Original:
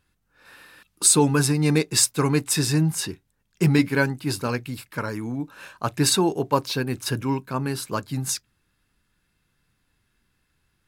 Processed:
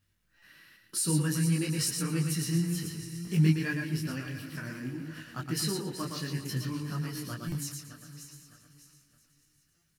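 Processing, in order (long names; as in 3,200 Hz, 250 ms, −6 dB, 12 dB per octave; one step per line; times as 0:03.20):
feedback delay that plays each chunk backwards 332 ms, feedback 54%, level −13 dB
flat-topped bell 630 Hz −9 dB
on a send: repeating echo 125 ms, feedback 22%, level −5 dB
on the sum: wrong playback speed 44.1 kHz file played as 48 kHz
in parallel at −3 dB: downward compressor, threshold −31 dBFS, peak gain reduction 18 dB
on the sum: thirty-one-band graphic EQ 100 Hz +6 dB, 160 Hz +6 dB, 8,000 Hz −3 dB
feedback echo with a high-pass in the loop 391 ms, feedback 62%, high-pass 830 Hz, level −16.5 dB
bit reduction 11 bits
buffer that repeats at 0:00.37/0:03.20/0:07.47/0:09.76, samples 256, times 8
micro pitch shift up and down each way 20 cents
level −9 dB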